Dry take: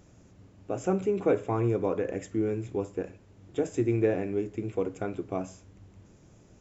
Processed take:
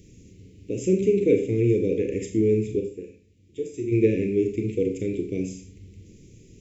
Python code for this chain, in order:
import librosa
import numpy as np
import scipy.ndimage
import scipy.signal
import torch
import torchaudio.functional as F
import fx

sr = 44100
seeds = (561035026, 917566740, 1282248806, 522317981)

y = scipy.signal.sosfilt(scipy.signal.ellip(3, 1.0, 40, [450.0, 2200.0], 'bandstop', fs=sr, output='sos'), x)
y = fx.resonator_bank(y, sr, root=38, chord='minor', decay_s=0.24, at=(2.79, 3.91), fade=0.02)
y = fx.rev_schroeder(y, sr, rt60_s=0.42, comb_ms=29, drr_db=5.0)
y = F.gain(torch.from_numpy(y), 6.5).numpy()